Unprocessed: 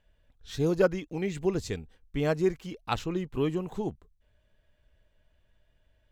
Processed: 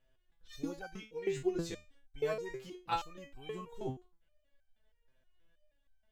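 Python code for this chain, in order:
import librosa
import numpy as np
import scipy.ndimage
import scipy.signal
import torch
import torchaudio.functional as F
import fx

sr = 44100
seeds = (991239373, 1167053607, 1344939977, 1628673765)

y = fx.resonator_held(x, sr, hz=6.3, low_hz=130.0, high_hz=780.0)
y = y * 10.0 ** (6.5 / 20.0)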